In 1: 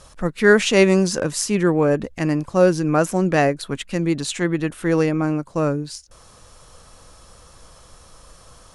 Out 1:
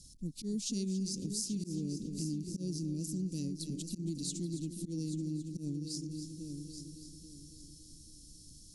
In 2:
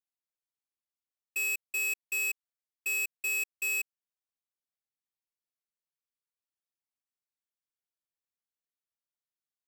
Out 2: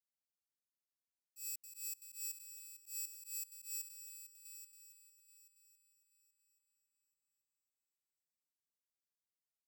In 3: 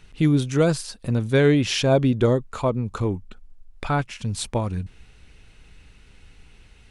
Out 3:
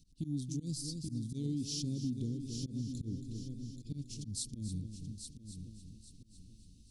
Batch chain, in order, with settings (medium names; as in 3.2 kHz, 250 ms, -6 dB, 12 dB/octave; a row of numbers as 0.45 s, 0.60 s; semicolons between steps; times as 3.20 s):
multi-head delay 277 ms, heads first and third, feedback 44%, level -12 dB; slow attack 131 ms; elliptic band-stop 270–4600 Hz, stop band 60 dB; bass shelf 140 Hz -6 dB; compression 3:1, threshold -32 dBFS; trim -4 dB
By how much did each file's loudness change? -19.0 LU, -14.5 LU, -17.5 LU